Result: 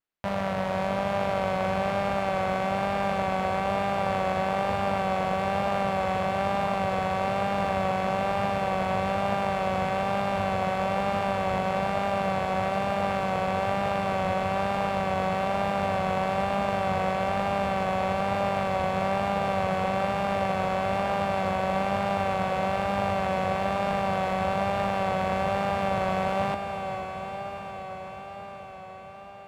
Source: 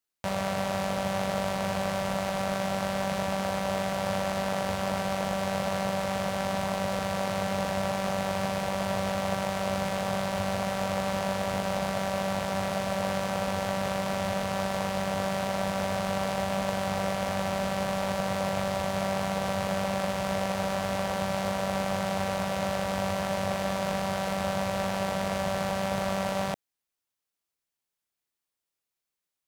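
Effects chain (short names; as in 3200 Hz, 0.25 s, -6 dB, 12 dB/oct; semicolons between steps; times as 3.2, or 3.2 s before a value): tone controls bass 0 dB, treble -14 dB; on a send: diffused feedback echo 0.474 s, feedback 75%, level -8.5 dB; on the sum: vibrato 1.1 Hz 40 cents; gain +1.5 dB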